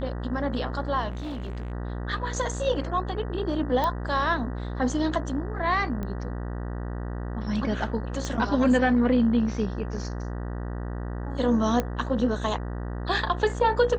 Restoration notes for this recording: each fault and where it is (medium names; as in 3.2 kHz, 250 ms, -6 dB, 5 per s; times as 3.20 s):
buzz 60 Hz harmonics 32 -32 dBFS
1.10–1.72 s: clipped -30 dBFS
3.84 s: pop -14 dBFS
6.03 s: pop -21 dBFS
8.25 s: pop -18 dBFS
11.80 s: pop -12 dBFS